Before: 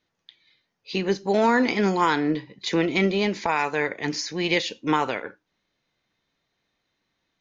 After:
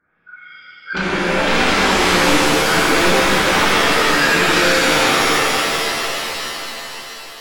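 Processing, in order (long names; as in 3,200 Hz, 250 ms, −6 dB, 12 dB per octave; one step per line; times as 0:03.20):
hearing-aid frequency compression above 1,100 Hz 4 to 1
sine wavefolder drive 15 dB, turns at −8 dBFS
reverb with rising layers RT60 3.7 s, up +7 semitones, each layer −2 dB, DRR −9.5 dB
level −15 dB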